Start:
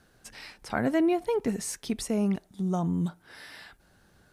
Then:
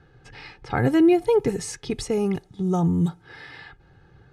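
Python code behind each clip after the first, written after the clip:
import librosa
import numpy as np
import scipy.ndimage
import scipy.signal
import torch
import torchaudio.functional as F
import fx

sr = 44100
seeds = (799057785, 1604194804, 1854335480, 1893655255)

y = fx.env_lowpass(x, sr, base_hz=2800.0, full_db=-23.5)
y = fx.peak_eq(y, sr, hz=140.0, db=12.5, octaves=1.2)
y = y + 0.7 * np.pad(y, (int(2.4 * sr / 1000.0), 0))[:len(y)]
y = y * 10.0 ** (3.0 / 20.0)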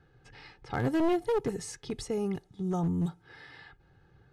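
y = np.minimum(x, 2.0 * 10.0 ** (-17.0 / 20.0) - x)
y = fx.dynamic_eq(y, sr, hz=2400.0, q=6.2, threshold_db=-54.0, ratio=4.0, max_db=-5)
y = y * 10.0 ** (-8.0 / 20.0)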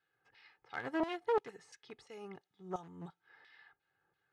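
y = fx.filter_lfo_bandpass(x, sr, shape='saw_down', hz=2.9, low_hz=880.0, high_hz=3400.0, q=0.85)
y = fx.upward_expand(y, sr, threshold_db=-53.0, expansion=1.5)
y = y * 10.0 ** (2.5 / 20.0)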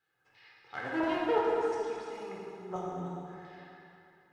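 y = fx.echo_heads(x, sr, ms=108, heads='first and second', feedback_pct=45, wet_db=-14.5)
y = fx.rev_plate(y, sr, seeds[0], rt60_s=2.8, hf_ratio=0.65, predelay_ms=0, drr_db=-5.0)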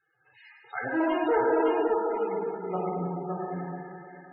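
y = 10.0 ** (-25.5 / 20.0) * np.tanh(x / 10.0 ** (-25.5 / 20.0))
y = fx.spec_topn(y, sr, count=32)
y = y + 10.0 ** (-3.5 / 20.0) * np.pad(y, (int(563 * sr / 1000.0), 0))[:len(y)]
y = y * 10.0 ** (7.0 / 20.0)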